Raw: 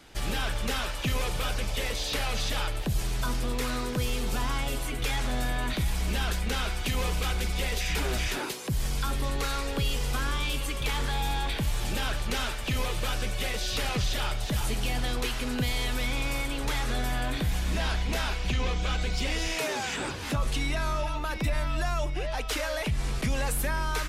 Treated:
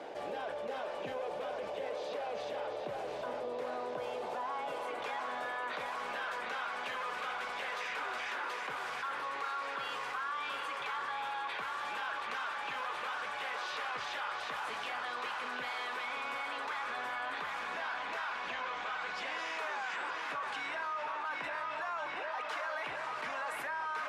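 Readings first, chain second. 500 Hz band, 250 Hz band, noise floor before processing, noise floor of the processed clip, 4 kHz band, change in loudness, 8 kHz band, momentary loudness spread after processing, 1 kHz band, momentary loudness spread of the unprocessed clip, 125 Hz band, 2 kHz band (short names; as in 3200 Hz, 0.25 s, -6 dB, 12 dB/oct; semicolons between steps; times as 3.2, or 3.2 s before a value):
-5.0 dB, -18.5 dB, -33 dBFS, -40 dBFS, -12.0 dB, -7.5 dB, -20.0 dB, 2 LU, -1.0 dB, 2 LU, under -30 dB, -3.5 dB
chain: HPF 420 Hz 6 dB/oct; notch 1300 Hz, Q 15; band-pass sweep 570 Hz -> 1200 Hz, 3.41–5.47; on a send: tape echo 0.729 s, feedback 83%, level -6.5 dB, low-pass 5900 Hz; on the sum: fast leveller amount 70%; gain -1.5 dB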